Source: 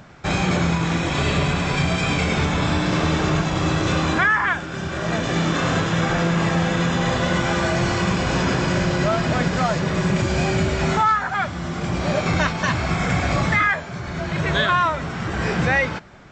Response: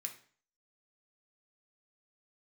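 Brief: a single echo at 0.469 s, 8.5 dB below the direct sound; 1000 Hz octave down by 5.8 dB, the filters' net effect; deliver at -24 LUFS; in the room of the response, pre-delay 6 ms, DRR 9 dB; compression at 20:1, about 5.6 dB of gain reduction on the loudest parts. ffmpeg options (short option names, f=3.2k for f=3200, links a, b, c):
-filter_complex "[0:a]equalizer=f=1k:t=o:g=-8,acompressor=threshold=-22dB:ratio=20,aecho=1:1:469:0.376,asplit=2[a][b];[1:a]atrim=start_sample=2205,adelay=6[c];[b][c]afir=irnorm=-1:irlink=0,volume=-6dB[d];[a][d]amix=inputs=2:normalize=0,volume=2dB"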